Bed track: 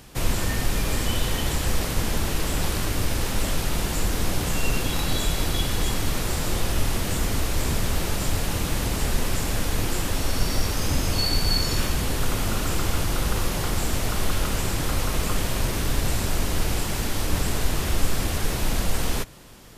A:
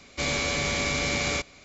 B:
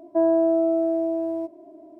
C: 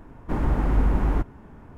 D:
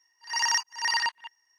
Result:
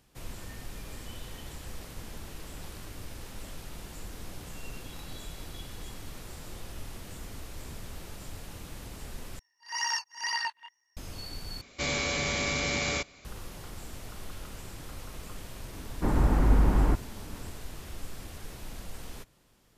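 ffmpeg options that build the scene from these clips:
ffmpeg -i bed.wav -i cue0.wav -i cue1.wav -i cue2.wav -i cue3.wav -filter_complex "[0:a]volume=-18dB[link_01];[4:a]flanger=delay=17:depth=5.4:speed=2[link_02];[link_01]asplit=3[link_03][link_04][link_05];[link_03]atrim=end=9.394[link_06];[link_02]atrim=end=1.58,asetpts=PTS-STARTPTS,volume=-2.5dB[link_07];[link_04]atrim=start=10.966:end=11.614[link_08];[1:a]atrim=end=1.64,asetpts=PTS-STARTPTS,volume=-3dB[link_09];[link_05]atrim=start=13.246[link_10];[3:a]atrim=end=1.77,asetpts=PTS-STARTPTS,volume=-1dB,afade=type=in:duration=0.004:curve=hsin,afade=type=out:start_time=1.766:duration=0.004:curve=hsin,adelay=15730[link_11];[link_06][link_07]acrossfade=duration=0.004:curve1=hsin:curve2=hsin[link_12];[link_12][link_08]acrossfade=duration=0.004:curve1=hsin:curve2=hsin[link_13];[link_13][link_09]acrossfade=duration=0.004:curve1=hsin:curve2=hsin[link_14];[link_14][link_10]acrossfade=duration=0.004:curve1=hsin:curve2=hsin[link_15];[link_15][link_11]amix=inputs=2:normalize=0" out.wav

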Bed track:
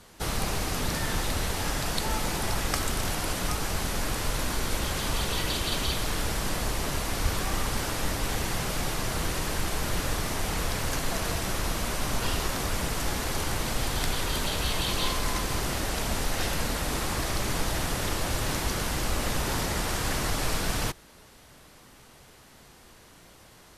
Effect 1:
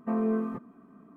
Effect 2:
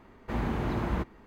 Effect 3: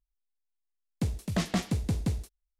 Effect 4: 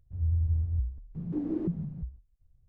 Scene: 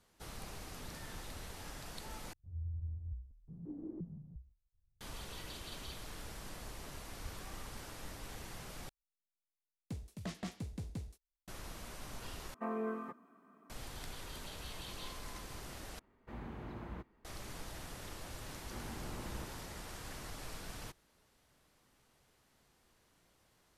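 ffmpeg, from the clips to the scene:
ffmpeg -i bed.wav -i cue0.wav -i cue1.wav -i cue2.wav -i cue3.wav -filter_complex "[2:a]asplit=2[link_01][link_02];[0:a]volume=-18.5dB[link_03];[4:a]lowpass=1000[link_04];[1:a]highpass=frequency=1000:poles=1[link_05];[link_01]equalizer=frequency=6200:width_type=o:width=0.77:gain=-2.5[link_06];[link_03]asplit=5[link_07][link_08][link_09][link_10][link_11];[link_07]atrim=end=2.334[link_12];[link_04]atrim=end=2.68,asetpts=PTS-STARTPTS,volume=-14dB[link_13];[link_08]atrim=start=5.006:end=8.894[link_14];[3:a]atrim=end=2.59,asetpts=PTS-STARTPTS,volume=-14dB[link_15];[link_09]atrim=start=11.476:end=12.544[link_16];[link_05]atrim=end=1.16,asetpts=PTS-STARTPTS,volume=-0.5dB[link_17];[link_10]atrim=start=13.696:end=15.994[link_18];[link_06]atrim=end=1.26,asetpts=PTS-STARTPTS,volume=-16dB[link_19];[link_11]atrim=start=17.246[link_20];[link_02]atrim=end=1.26,asetpts=PTS-STARTPTS,volume=-16.5dB,afade=type=in:duration=0.004:curve=hsin,afade=type=out:start_time=1.256:duration=0.004:curve=hsin,adelay=18420[link_21];[link_12][link_13]acrossfade=duration=0.004:curve1=hsin:curve2=hsin[link_22];[link_22][link_14]acrossfade=duration=0.004:curve1=hsin:curve2=hsin[link_23];[link_23][link_15]acrossfade=duration=0.004:curve1=hsin:curve2=hsin[link_24];[link_24][link_16]acrossfade=duration=0.004:curve1=hsin:curve2=hsin[link_25];[link_25][link_17]acrossfade=duration=0.004:curve1=hsin:curve2=hsin[link_26];[link_26][link_18]acrossfade=duration=0.004:curve1=hsin:curve2=hsin[link_27];[link_27][link_19]acrossfade=duration=0.004:curve1=hsin:curve2=hsin[link_28];[link_28][link_20]acrossfade=duration=0.004:curve1=hsin:curve2=hsin[link_29];[link_29][link_21]amix=inputs=2:normalize=0" out.wav

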